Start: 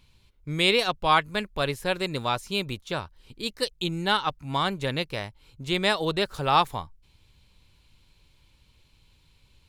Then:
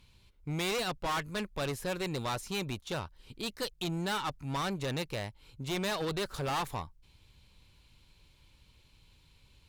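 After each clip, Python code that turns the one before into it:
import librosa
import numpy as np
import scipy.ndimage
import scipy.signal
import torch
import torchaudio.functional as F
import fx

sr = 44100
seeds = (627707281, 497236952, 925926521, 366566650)

y = fx.tube_stage(x, sr, drive_db=30.0, bias=0.35)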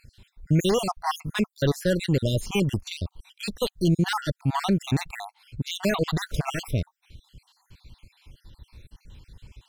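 y = fx.spec_dropout(x, sr, seeds[0], share_pct=56)
y = fx.low_shelf(y, sr, hz=380.0, db=9.0)
y = y * 10.0 ** (8.5 / 20.0)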